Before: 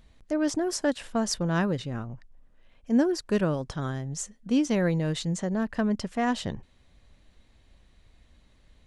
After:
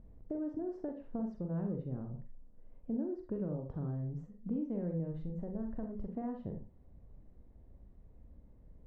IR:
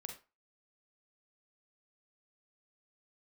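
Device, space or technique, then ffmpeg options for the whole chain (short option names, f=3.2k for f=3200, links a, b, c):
television next door: -filter_complex "[0:a]acompressor=threshold=-38dB:ratio=4,lowpass=530[a];[1:a]atrim=start_sample=2205[b];[a][b]afir=irnorm=-1:irlink=0,asplit=3[c][d][e];[c]afade=t=out:st=5.11:d=0.02[f];[d]asubboost=boost=6:cutoff=64,afade=t=in:st=5.11:d=0.02,afade=t=out:st=6.05:d=0.02[g];[e]afade=t=in:st=6.05:d=0.02[h];[f][g][h]amix=inputs=3:normalize=0,volume=6dB"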